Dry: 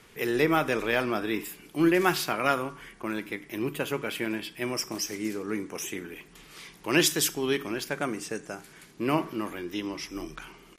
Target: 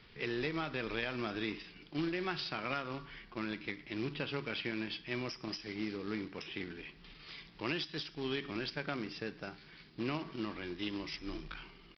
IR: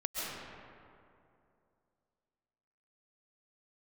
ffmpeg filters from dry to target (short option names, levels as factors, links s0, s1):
-af "equalizer=f=660:w=0.31:g=-9.5,atempo=0.9,acompressor=threshold=0.0224:ratio=16,aresample=11025,acrusher=bits=3:mode=log:mix=0:aa=0.000001,aresample=44100,volume=1.12"